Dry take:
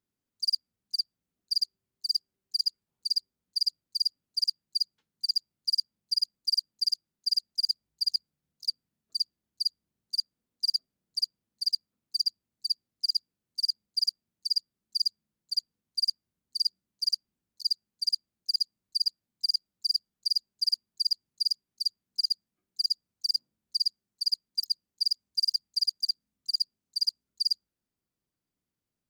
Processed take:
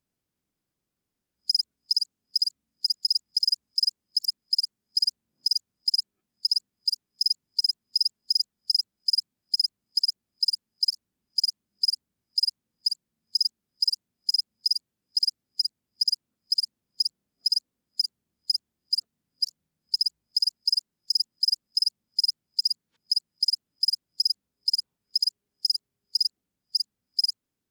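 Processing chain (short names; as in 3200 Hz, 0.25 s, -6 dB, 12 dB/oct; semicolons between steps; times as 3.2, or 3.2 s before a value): whole clip reversed; wide varispeed 1.05×; gain +3.5 dB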